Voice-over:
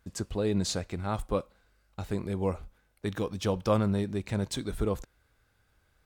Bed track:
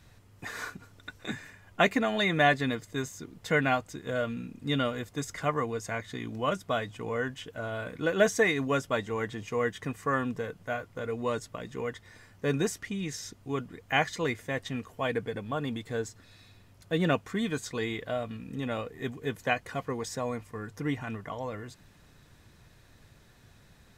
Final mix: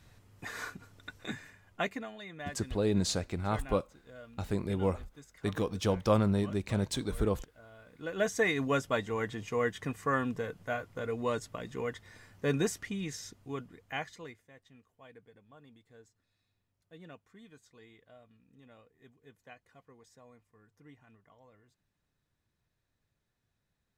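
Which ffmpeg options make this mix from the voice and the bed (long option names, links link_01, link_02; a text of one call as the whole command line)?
ffmpeg -i stem1.wav -i stem2.wav -filter_complex "[0:a]adelay=2400,volume=-0.5dB[link_01];[1:a]volume=15.5dB,afade=type=out:start_time=1.2:duration=0.98:silence=0.141254,afade=type=in:start_time=7.87:duration=0.76:silence=0.125893,afade=type=out:start_time=12.75:duration=1.7:silence=0.0707946[link_02];[link_01][link_02]amix=inputs=2:normalize=0" out.wav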